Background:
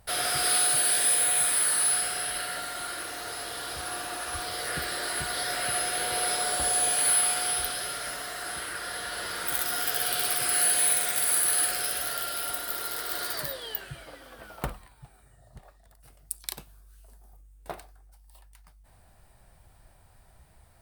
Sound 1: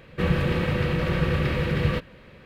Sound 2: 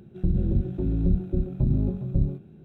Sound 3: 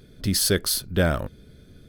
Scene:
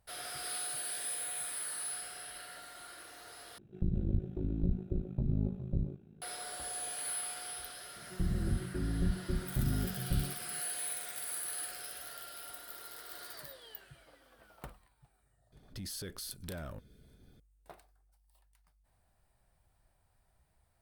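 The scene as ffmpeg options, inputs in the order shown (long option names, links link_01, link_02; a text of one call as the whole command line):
ffmpeg -i bed.wav -i cue0.wav -i cue1.wav -i cue2.wav -filter_complex "[2:a]asplit=2[link_01][link_02];[0:a]volume=-15dB[link_03];[link_01]tremolo=f=53:d=0.788[link_04];[3:a]acompressor=threshold=-27dB:ratio=5:attack=0.94:release=26:knee=1:detection=peak[link_05];[link_03]asplit=2[link_06][link_07];[link_06]atrim=end=3.584[link_08];[link_04]atrim=end=2.64,asetpts=PTS-STARTPTS,volume=-6dB[link_09];[link_07]atrim=start=6.216[link_10];[link_02]atrim=end=2.64,asetpts=PTS-STARTPTS,volume=-9.5dB,afade=type=in:duration=0.004:curve=hsin,afade=type=out:start_time=2.636:duration=0.004:curve=hsin,adelay=7960[link_11];[link_05]atrim=end=1.88,asetpts=PTS-STARTPTS,volume=-12.5dB,afade=type=in:duration=0.004:curve=hsin,afade=type=out:start_time=1.876:duration=0.004:curve=hsin,adelay=15520[link_12];[link_08][link_09]acrossfade=duration=0.004:curve1=hsin:curve2=hsin[link_13];[link_13][link_10]acrossfade=duration=0.004:curve1=hsin:curve2=hsin[link_14];[link_14][link_11][link_12]amix=inputs=3:normalize=0" out.wav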